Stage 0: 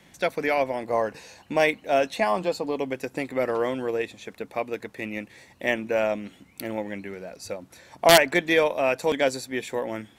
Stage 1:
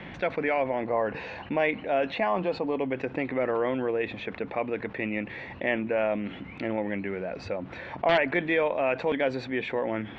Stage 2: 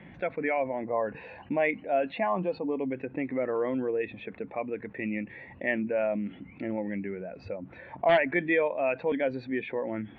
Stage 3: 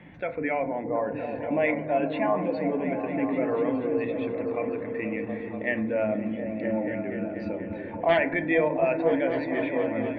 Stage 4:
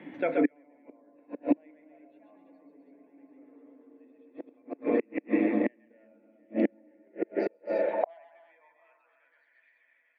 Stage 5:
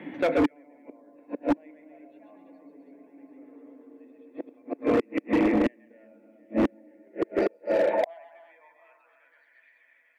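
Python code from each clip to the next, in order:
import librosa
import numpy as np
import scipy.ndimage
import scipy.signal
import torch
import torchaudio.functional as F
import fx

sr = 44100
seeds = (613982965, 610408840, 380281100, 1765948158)

y1 = scipy.signal.sosfilt(scipy.signal.butter(4, 2900.0, 'lowpass', fs=sr, output='sos'), x)
y1 = fx.env_flatten(y1, sr, amount_pct=50)
y1 = F.gain(torch.from_numpy(y1), -7.5).numpy()
y2 = fx.dynamic_eq(y1, sr, hz=540.0, q=0.87, threshold_db=-35.0, ratio=4.0, max_db=-4)
y2 = fx.spectral_expand(y2, sr, expansion=1.5)
y3 = fx.echo_opening(y2, sr, ms=241, hz=200, octaves=1, feedback_pct=70, wet_db=0)
y3 = fx.rev_fdn(y3, sr, rt60_s=0.65, lf_ratio=1.0, hf_ratio=0.35, size_ms=20.0, drr_db=8.0)
y4 = fx.echo_multitap(y3, sr, ms=(128, 135, 255, 331, 731), db=(-7.0, -5.5, -6.0, -6.0, -14.5))
y4 = fx.gate_flip(y4, sr, shuts_db=-18.0, range_db=-39)
y4 = fx.filter_sweep_highpass(y4, sr, from_hz=290.0, to_hz=1800.0, start_s=6.84, end_s=9.65, q=3.2)
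y5 = np.clip(10.0 ** (23.0 / 20.0) * y4, -1.0, 1.0) / 10.0 ** (23.0 / 20.0)
y5 = F.gain(torch.from_numpy(y5), 5.5).numpy()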